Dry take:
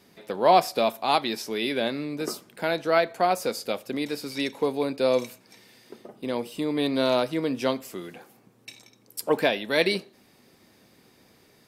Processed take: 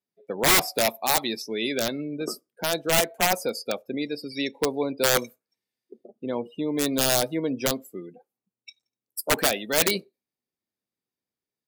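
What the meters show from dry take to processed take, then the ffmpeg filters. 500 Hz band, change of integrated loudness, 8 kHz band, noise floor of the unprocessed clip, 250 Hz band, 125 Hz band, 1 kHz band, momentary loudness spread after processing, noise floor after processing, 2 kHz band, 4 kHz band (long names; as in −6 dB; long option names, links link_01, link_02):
−2.5 dB, +1.0 dB, +14.0 dB, −59 dBFS, −0.5 dB, +2.0 dB, −3.5 dB, 12 LU, below −85 dBFS, +2.5 dB, +4.0 dB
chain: -af "aeval=exprs='(mod(5.31*val(0)+1,2)-1)/5.31':channel_layout=same,highshelf=frequency=6900:gain=7.5,afftdn=noise_reduction=36:noise_floor=-34"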